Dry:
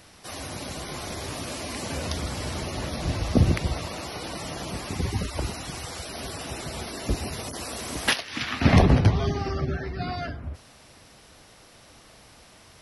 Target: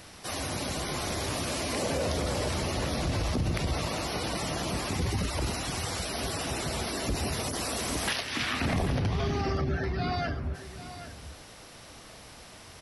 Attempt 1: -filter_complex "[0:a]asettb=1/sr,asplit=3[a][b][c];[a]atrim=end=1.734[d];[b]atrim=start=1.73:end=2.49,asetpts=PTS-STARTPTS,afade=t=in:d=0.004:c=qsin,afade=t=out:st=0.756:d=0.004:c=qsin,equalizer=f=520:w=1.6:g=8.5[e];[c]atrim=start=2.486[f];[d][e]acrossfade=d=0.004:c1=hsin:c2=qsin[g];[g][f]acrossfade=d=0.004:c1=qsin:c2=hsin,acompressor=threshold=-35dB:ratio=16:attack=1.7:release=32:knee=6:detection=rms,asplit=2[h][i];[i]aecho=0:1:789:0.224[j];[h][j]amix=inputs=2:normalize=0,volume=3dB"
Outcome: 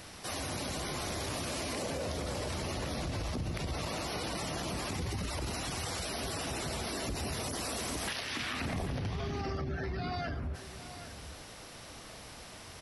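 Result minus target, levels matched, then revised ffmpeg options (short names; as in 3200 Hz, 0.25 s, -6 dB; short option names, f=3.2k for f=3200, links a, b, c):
compressor: peak gain reduction +7.5 dB
-filter_complex "[0:a]asettb=1/sr,asplit=3[a][b][c];[a]atrim=end=1.734[d];[b]atrim=start=1.73:end=2.49,asetpts=PTS-STARTPTS,afade=t=in:d=0.004:c=qsin,afade=t=out:st=0.756:d=0.004:c=qsin,equalizer=f=520:w=1.6:g=8.5[e];[c]atrim=start=2.486[f];[d][e]acrossfade=d=0.004:c1=hsin:c2=qsin[g];[g][f]acrossfade=d=0.004:c1=qsin:c2=hsin,acompressor=threshold=-27dB:ratio=16:attack=1.7:release=32:knee=6:detection=rms,asplit=2[h][i];[i]aecho=0:1:789:0.224[j];[h][j]amix=inputs=2:normalize=0,volume=3dB"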